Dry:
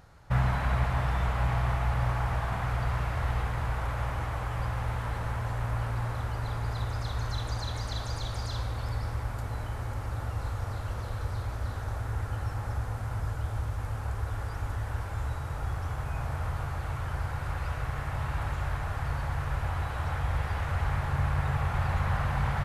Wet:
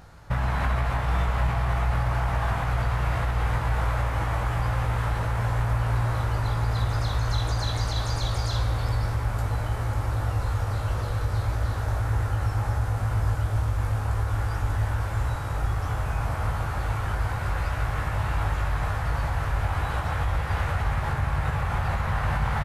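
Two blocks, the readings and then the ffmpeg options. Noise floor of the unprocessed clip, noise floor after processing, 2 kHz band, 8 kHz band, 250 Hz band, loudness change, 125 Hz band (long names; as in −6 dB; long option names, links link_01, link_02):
−36 dBFS, −30 dBFS, +5.0 dB, +6.0 dB, +4.0 dB, +5.0 dB, +5.0 dB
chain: -filter_complex "[0:a]alimiter=limit=-23dB:level=0:latency=1:release=87,asplit=2[link_01][link_02];[link_02]adelay=19,volume=-5dB[link_03];[link_01][link_03]amix=inputs=2:normalize=0,volume=5.5dB"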